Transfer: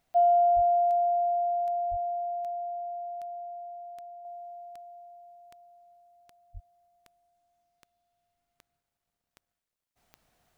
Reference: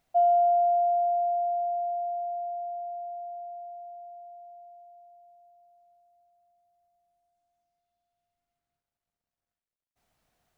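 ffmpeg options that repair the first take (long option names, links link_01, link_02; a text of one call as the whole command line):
ffmpeg -i in.wav -filter_complex "[0:a]adeclick=threshold=4,asplit=3[link_01][link_02][link_03];[link_01]afade=type=out:start_time=0.55:duration=0.02[link_04];[link_02]highpass=frequency=140:width=0.5412,highpass=frequency=140:width=1.3066,afade=type=in:start_time=0.55:duration=0.02,afade=type=out:start_time=0.67:duration=0.02[link_05];[link_03]afade=type=in:start_time=0.67:duration=0.02[link_06];[link_04][link_05][link_06]amix=inputs=3:normalize=0,asplit=3[link_07][link_08][link_09];[link_07]afade=type=out:start_time=1.9:duration=0.02[link_10];[link_08]highpass=frequency=140:width=0.5412,highpass=frequency=140:width=1.3066,afade=type=in:start_time=1.9:duration=0.02,afade=type=out:start_time=2.02:duration=0.02[link_11];[link_09]afade=type=in:start_time=2.02:duration=0.02[link_12];[link_10][link_11][link_12]amix=inputs=3:normalize=0,asplit=3[link_13][link_14][link_15];[link_13]afade=type=out:start_time=6.53:duration=0.02[link_16];[link_14]highpass=frequency=140:width=0.5412,highpass=frequency=140:width=1.3066,afade=type=in:start_time=6.53:duration=0.02,afade=type=out:start_time=6.65:duration=0.02[link_17];[link_15]afade=type=in:start_time=6.65:duration=0.02[link_18];[link_16][link_17][link_18]amix=inputs=3:normalize=0,asetnsamples=nb_out_samples=441:pad=0,asendcmd='4.25 volume volume -4.5dB',volume=0dB" out.wav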